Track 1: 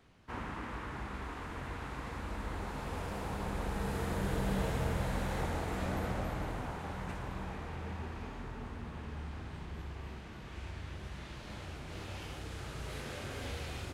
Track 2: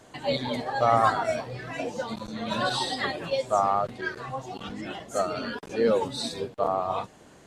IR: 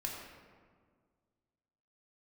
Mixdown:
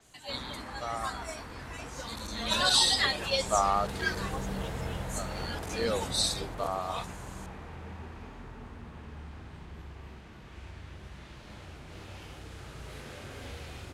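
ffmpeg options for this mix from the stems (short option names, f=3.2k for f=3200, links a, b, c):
-filter_complex "[0:a]volume=-2dB[a];[1:a]crystalizer=i=9.5:c=0,volume=1.5dB,afade=t=in:st=1.92:d=0.58:silence=0.251189,afade=t=out:st=4.27:d=0.21:silence=0.251189,afade=t=in:st=5.4:d=0.26:silence=0.375837[b];[a][b]amix=inputs=2:normalize=0,adynamicequalizer=threshold=0.00631:dfrequency=7300:dqfactor=0.7:tfrequency=7300:tqfactor=0.7:attack=5:release=100:ratio=0.375:range=3:mode=cutabove:tftype=highshelf"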